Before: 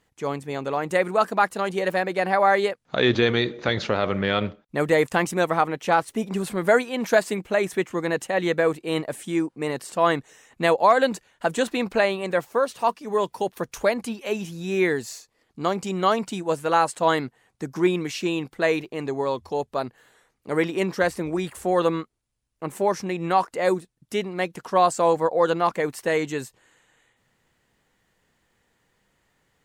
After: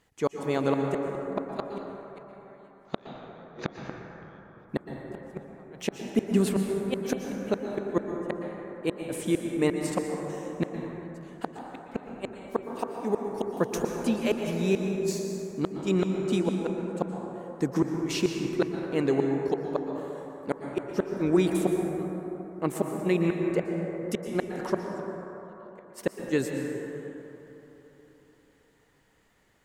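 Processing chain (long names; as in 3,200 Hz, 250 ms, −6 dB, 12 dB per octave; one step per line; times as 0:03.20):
gate with flip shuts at −16 dBFS, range −41 dB
dense smooth reverb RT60 3.9 s, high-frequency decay 0.3×, pre-delay 105 ms, DRR 2 dB
dynamic equaliser 270 Hz, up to +5 dB, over −43 dBFS, Q 0.87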